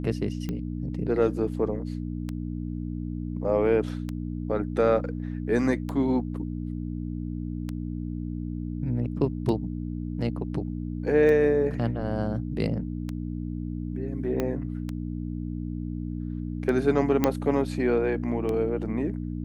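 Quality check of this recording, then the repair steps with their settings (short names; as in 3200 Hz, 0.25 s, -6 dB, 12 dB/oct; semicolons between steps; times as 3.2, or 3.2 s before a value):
hum 60 Hz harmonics 5 -32 dBFS
tick 33 1/3 rpm -19 dBFS
14.4 pop -14 dBFS
17.24 pop -8 dBFS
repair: de-click; de-hum 60 Hz, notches 5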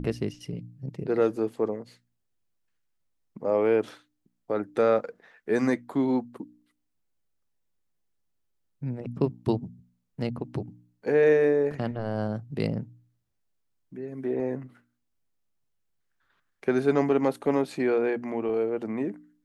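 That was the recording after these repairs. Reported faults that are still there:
14.4 pop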